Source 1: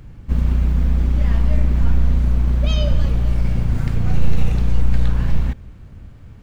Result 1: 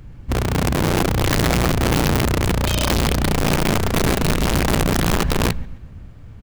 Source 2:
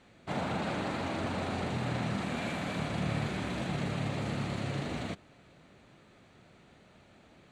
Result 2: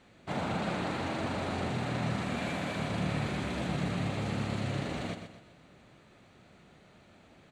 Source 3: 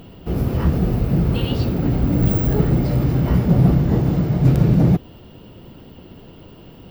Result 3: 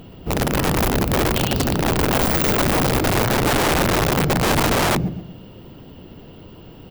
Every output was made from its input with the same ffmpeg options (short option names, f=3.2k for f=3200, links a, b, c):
-af "aecho=1:1:124|248|372|496:0.376|0.147|0.0572|0.0223,aeval=exprs='(mod(4.47*val(0)+1,2)-1)/4.47':c=same"